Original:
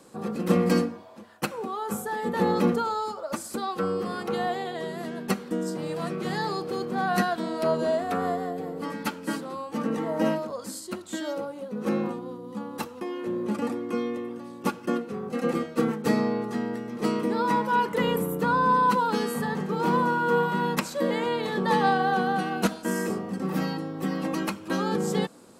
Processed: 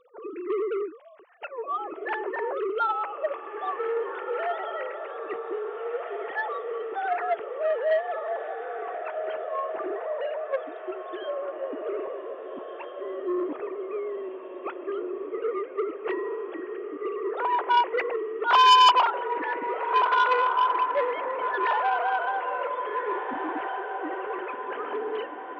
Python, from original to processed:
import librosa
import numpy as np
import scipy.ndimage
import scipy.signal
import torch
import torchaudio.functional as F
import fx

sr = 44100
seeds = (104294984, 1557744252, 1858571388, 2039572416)

y = fx.sine_speech(x, sr)
y = fx.echo_diffused(y, sr, ms=1706, feedback_pct=48, wet_db=-7)
y = fx.transformer_sat(y, sr, knee_hz=2200.0)